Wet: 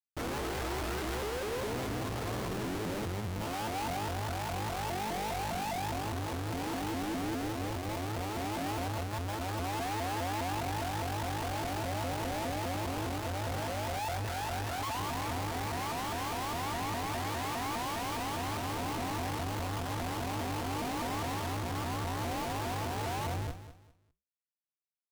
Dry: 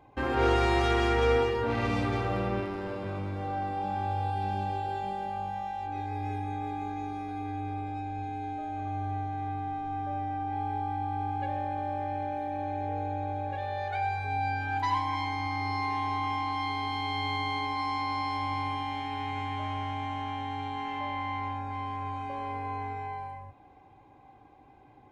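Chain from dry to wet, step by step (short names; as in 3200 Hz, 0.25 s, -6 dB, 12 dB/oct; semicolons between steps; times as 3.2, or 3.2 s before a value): Wiener smoothing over 15 samples; 11.71–12.3 bell 3300 Hz -10 dB 2 oct; in parallel at -1 dB: compressor 5:1, threshold -45 dBFS, peak gain reduction 21 dB; on the sum: Schmitt trigger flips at -38 dBFS; flange 1.3 Hz, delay 2.2 ms, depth 8.6 ms, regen -82%; on a send: feedback echo 0.2 s, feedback 27%, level -12.5 dB; on the sum: shaped vibrato saw up 4.9 Hz, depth 250 cents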